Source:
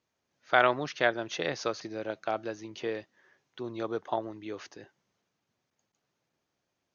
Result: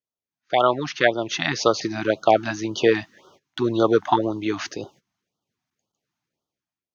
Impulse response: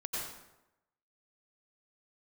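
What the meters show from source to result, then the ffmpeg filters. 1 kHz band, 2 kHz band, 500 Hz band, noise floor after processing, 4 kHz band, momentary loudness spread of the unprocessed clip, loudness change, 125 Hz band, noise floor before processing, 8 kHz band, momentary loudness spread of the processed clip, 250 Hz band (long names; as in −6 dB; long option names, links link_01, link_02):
+9.0 dB, +5.5 dB, +11.0 dB, below −85 dBFS, +10.5 dB, 16 LU, +9.5 dB, +12.5 dB, −83 dBFS, can't be measured, 10 LU, +13.5 dB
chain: -af "dynaudnorm=framelen=110:gausssize=11:maxgain=15dB,agate=range=-19dB:threshold=-50dB:ratio=16:detection=peak,afftfilt=real='re*(1-between(b*sr/1024,420*pow(2100/420,0.5+0.5*sin(2*PI*1.9*pts/sr))/1.41,420*pow(2100/420,0.5+0.5*sin(2*PI*1.9*pts/sr))*1.41))':imag='im*(1-between(b*sr/1024,420*pow(2100/420,0.5+0.5*sin(2*PI*1.9*pts/sr))/1.41,420*pow(2100/420,0.5+0.5*sin(2*PI*1.9*pts/sr))*1.41))':win_size=1024:overlap=0.75,volume=2.5dB"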